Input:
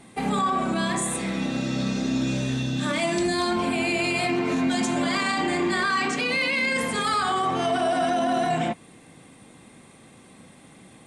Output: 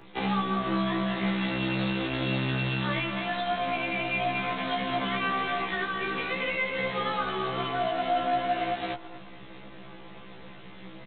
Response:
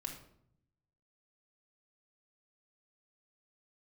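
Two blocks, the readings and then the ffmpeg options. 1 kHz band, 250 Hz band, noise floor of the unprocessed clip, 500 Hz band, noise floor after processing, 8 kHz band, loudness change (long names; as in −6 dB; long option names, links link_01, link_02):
−3.5 dB, −6.0 dB, −51 dBFS, −4.5 dB, −45 dBFS, below −40 dB, −4.5 dB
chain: -filter_complex "[0:a]highpass=41,lowshelf=frequency=150:gain=-3,aecho=1:1:5.9:0.75,asplit=2[link_01][link_02];[link_02]adelay=217,lowpass=frequency=2900:poles=1,volume=-6dB,asplit=2[link_03][link_04];[link_04]adelay=217,lowpass=frequency=2900:poles=1,volume=0.23,asplit=2[link_05][link_06];[link_06]adelay=217,lowpass=frequency=2900:poles=1,volume=0.23[link_07];[link_01][link_03][link_05][link_07]amix=inputs=4:normalize=0,areverse,acompressor=mode=upward:threshold=-33dB:ratio=2.5,areverse,aeval=exprs='0.376*(cos(1*acos(clip(val(0)/0.376,-1,1)))-cos(1*PI/2))+0.015*(cos(6*acos(clip(val(0)/0.376,-1,1)))-cos(6*PI/2))+0.0188*(cos(7*acos(clip(val(0)/0.376,-1,1)))-cos(7*PI/2))+0.0168*(cos(8*acos(clip(val(0)/0.376,-1,1)))-cos(8*PI/2))':channel_layout=same,aresample=8000,acrusher=bits=6:dc=4:mix=0:aa=0.000001,aresample=44100,acrossover=split=100|670[link_08][link_09][link_10];[link_08]acompressor=threshold=-53dB:ratio=4[link_11];[link_09]acompressor=threshold=-36dB:ratio=4[link_12];[link_10]acompressor=threshold=-34dB:ratio=4[link_13];[link_11][link_12][link_13]amix=inputs=3:normalize=0,afftfilt=real='re*1.73*eq(mod(b,3),0)':imag='im*1.73*eq(mod(b,3),0)':win_size=2048:overlap=0.75,volume=5.5dB"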